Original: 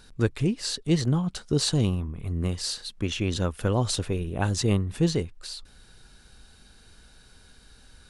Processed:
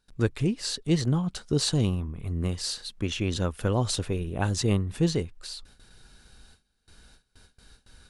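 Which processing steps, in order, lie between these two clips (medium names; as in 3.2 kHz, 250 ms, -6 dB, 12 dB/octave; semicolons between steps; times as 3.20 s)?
gate with hold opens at -42 dBFS; trim -1 dB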